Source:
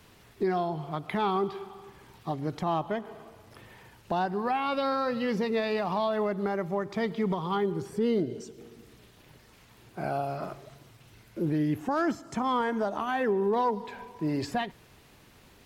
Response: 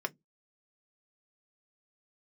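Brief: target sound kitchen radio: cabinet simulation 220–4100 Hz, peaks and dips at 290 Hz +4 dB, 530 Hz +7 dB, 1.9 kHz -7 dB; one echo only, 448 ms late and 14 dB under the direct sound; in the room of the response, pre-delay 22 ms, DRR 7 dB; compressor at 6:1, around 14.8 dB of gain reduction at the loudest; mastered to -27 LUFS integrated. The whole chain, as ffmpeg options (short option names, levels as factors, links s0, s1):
-filter_complex "[0:a]acompressor=threshold=0.01:ratio=6,aecho=1:1:448:0.2,asplit=2[s0][s1];[1:a]atrim=start_sample=2205,adelay=22[s2];[s1][s2]afir=irnorm=-1:irlink=0,volume=0.282[s3];[s0][s3]amix=inputs=2:normalize=0,highpass=220,equalizer=f=290:t=q:w=4:g=4,equalizer=f=530:t=q:w=4:g=7,equalizer=f=1900:t=q:w=4:g=-7,lowpass=f=4100:w=0.5412,lowpass=f=4100:w=1.3066,volume=5.62"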